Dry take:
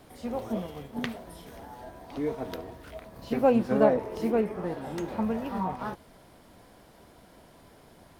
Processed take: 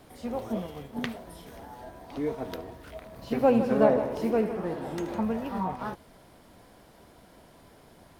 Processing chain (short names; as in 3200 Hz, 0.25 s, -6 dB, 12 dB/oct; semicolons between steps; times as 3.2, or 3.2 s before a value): 2.94–5.19 multi-head echo 78 ms, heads first and second, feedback 44%, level -13 dB